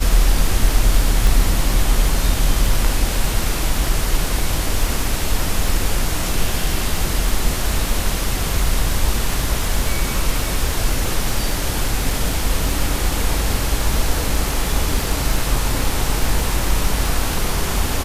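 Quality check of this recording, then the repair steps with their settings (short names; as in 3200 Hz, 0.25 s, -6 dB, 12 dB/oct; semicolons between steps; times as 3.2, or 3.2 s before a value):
crackle 22/s -22 dBFS
1.27 pop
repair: de-click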